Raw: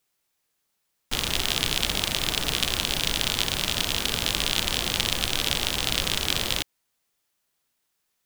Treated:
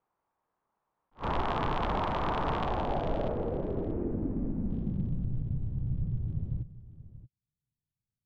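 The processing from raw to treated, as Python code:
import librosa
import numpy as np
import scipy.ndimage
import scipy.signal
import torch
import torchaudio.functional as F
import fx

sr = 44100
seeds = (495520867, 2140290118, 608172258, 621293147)

y = fx.cvsd(x, sr, bps=16000, at=(3.29, 4.69))
y = fx.filter_sweep_lowpass(y, sr, from_hz=1000.0, to_hz=130.0, start_s=2.51, end_s=5.46, q=2.8)
y = y + 10.0 ** (-16.0 / 20.0) * np.pad(y, (int(632 * sr / 1000.0), 0))[:len(y)]
y = fx.attack_slew(y, sr, db_per_s=350.0)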